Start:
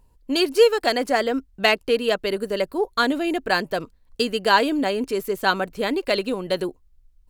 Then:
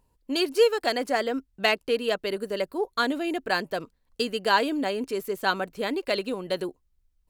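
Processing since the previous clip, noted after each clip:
low-shelf EQ 66 Hz −10.5 dB
level −4.5 dB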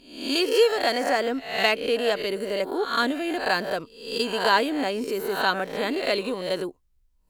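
peak hold with a rise ahead of every peak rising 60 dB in 0.59 s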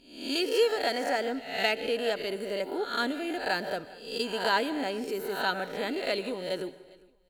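Butterworth band-reject 1,100 Hz, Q 6.3
repeating echo 405 ms, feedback 30%, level −24 dB
dense smooth reverb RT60 0.73 s, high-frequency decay 0.75×, pre-delay 120 ms, DRR 16 dB
level −5.5 dB

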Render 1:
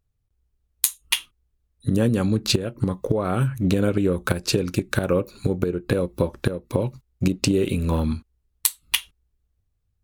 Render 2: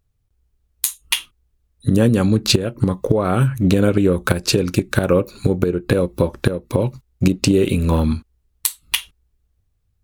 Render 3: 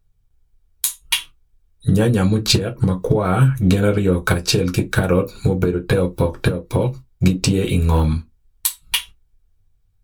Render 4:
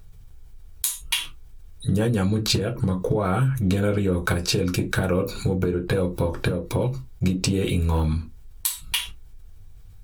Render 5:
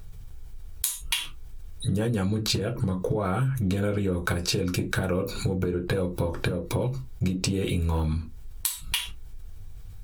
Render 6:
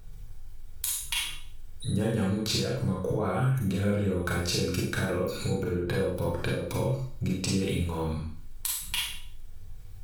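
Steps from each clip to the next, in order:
boost into a limiter +6.5 dB; level −1 dB
convolution reverb, pre-delay 3 ms, DRR 3 dB; level −2.5 dB
envelope flattener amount 50%; level −8.5 dB
downward compressor 2 to 1, threshold −33 dBFS, peak gain reduction 9 dB; level +4 dB
four-comb reverb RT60 0.5 s, combs from 31 ms, DRR −2 dB; level −5.5 dB

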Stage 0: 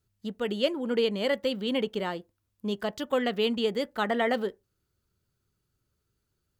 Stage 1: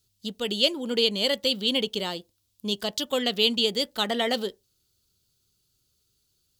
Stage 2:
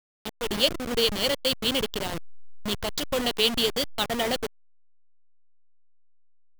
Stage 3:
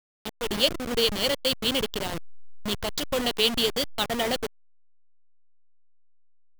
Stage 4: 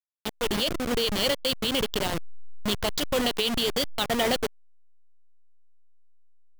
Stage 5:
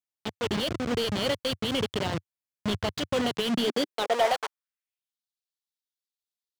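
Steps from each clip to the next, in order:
high shelf with overshoot 2,600 Hz +12 dB, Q 1.5
hold until the input has moved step −24 dBFS
no processing that can be heard
brickwall limiter −18 dBFS, peak gain reduction 11 dB; level +3 dB
high-pass filter sweep 95 Hz → 3,800 Hz, 0:03.20–0:05.20; slew-rate limiting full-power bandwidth 190 Hz; level −1.5 dB

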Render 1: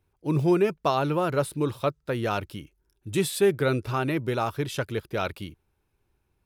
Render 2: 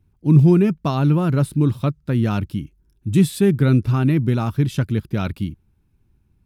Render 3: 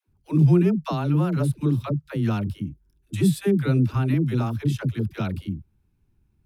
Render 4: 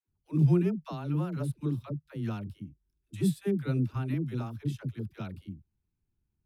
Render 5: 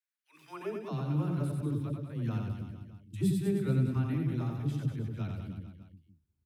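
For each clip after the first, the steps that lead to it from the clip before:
low shelf with overshoot 330 Hz +12 dB, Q 1.5
all-pass dispersion lows, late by 82 ms, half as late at 430 Hz; level −4.5 dB
expander for the loud parts 1.5 to 1, over −31 dBFS; level −5.5 dB
high-pass filter sweep 1,800 Hz → 76 Hz, 0:00.44–0:01.07; reverse bouncing-ball delay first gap 90 ms, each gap 1.15×, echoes 5; level −3.5 dB

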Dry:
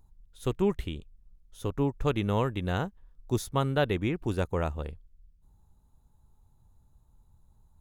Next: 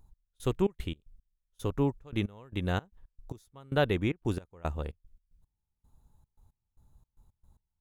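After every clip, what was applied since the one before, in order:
gate pattern "x..xx.x.x...xxx." 113 BPM −24 dB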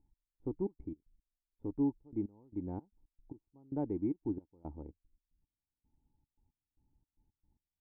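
dynamic equaliser 1,800 Hz, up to +5 dB, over −45 dBFS, Q 0.74
formant resonators in series u
level +1 dB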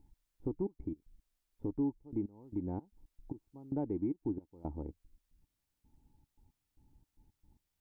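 downward compressor 2 to 1, threshold −48 dBFS, peak gain reduction 11.5 dB
level +9 dB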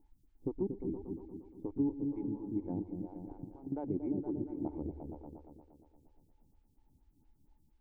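on a send: echo whose low-pass opens from repeat to repeat 117 ms, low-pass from 200 Hz, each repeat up 1 octave, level 0 dB
on the sum: phaser with staggered stages 4.3 Hz
level +1 dB

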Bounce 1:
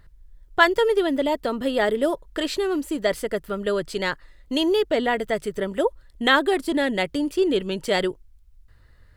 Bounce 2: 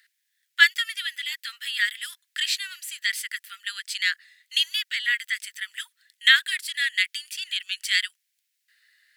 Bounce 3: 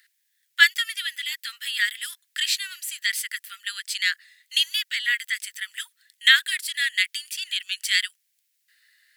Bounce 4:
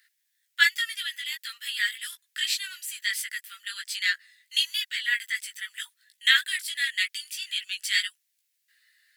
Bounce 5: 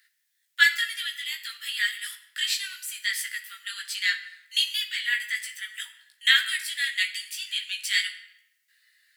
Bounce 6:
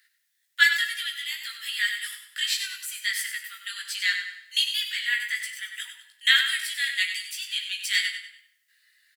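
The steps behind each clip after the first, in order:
Butterworth high-pass 1,700 Hz 48 dB per octave; level +6 dB
high-shelf EQ 6,600 Hz +6 dB
multi-voice chorus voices 4, 0.33 Hz, delay 17 ms, depth 2.5 ms
rectangular room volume 340 cubic metres, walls mixed, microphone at 0.51 metres
repeating echo 97 ms, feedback 36%, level −9 dB

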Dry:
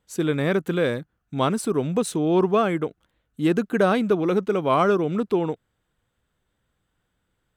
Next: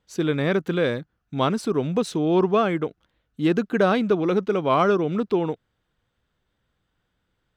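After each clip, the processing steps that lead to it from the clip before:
high shelf with overshoot 6,800 Hz −7.5 dB, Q 1.5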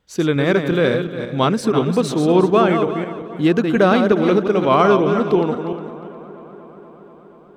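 feedback delay that plays each chunk backwards 179 ms, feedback 45%, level −6.5 dB
delay with a low-pass on its return 240 ms, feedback 80%, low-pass 1,800 Hz, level −20 dB
level +5 dB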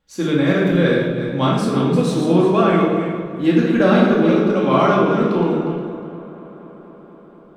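rectangular room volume 570 cubic metres, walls mixed, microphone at 2.3 metres
level −6 dB

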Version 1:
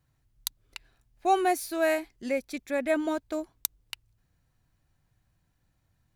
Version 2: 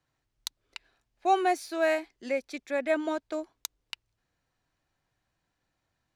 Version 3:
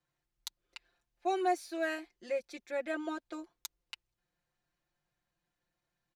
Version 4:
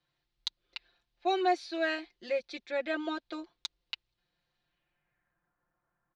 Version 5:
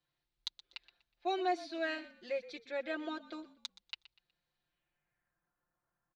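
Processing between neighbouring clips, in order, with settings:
three-way crossover with the lows and the highs turned down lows −13 dB, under 270 Hz, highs −15 dB, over 7,700 Hz
comb filter 5.7 ms, depth 85%; level −8.5 dB
low-pass filter sweep 4,000 Hz → 1,300 Hz, 0:04.58–0:05.52; level +2.5 dB
echo with shifted repeats 122 ms, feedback 31%, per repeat −40 Hz, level −17 dB; level −5.5 dB

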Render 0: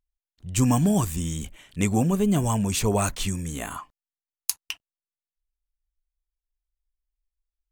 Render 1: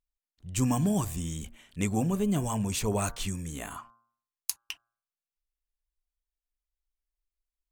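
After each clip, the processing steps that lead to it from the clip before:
hum removal 116.7 Hz, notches 14
level −5.5 dB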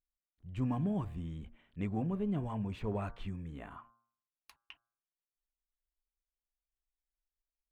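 high-frequency loss of the air 500 metres
in parallel at −11 dB: asymmetric clip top −31.5 dBFS
on the sum: level −8 dB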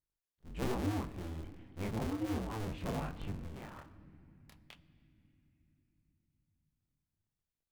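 sub-harmonics by changed cycles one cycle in 2, inverted
chorus effect 1.2 Hz, delay 20 ms, depth 7.6 ms
on a send at −15 dB: convolution reverb RT60 3.4 s, pre-delay 7 ms
on the sum: level +1 dB

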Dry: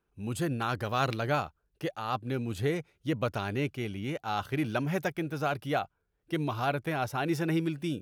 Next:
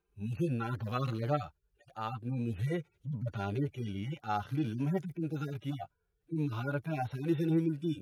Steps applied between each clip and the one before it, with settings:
harmonic-percussive split with one part muted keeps harmonic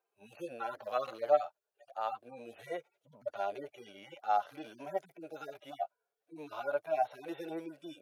high-pass with resonance 630 Hz, resonance Q 4.9
level −3.5 dB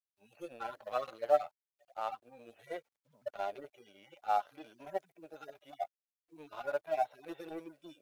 mu-law and A-law mismatch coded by A

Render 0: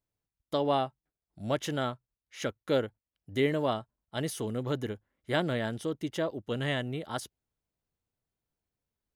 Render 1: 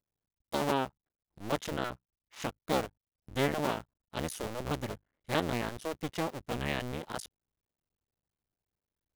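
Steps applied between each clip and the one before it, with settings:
sub-harmonics by changed cycles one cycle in 2, muted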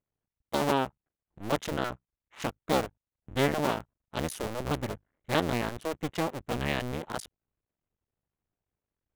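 adaptive Wiener filter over 9 samples
level +3.5 dB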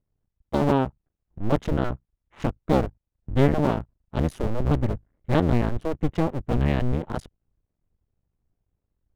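spectral tilt −3.5 dB per octave
level +1.5 dB

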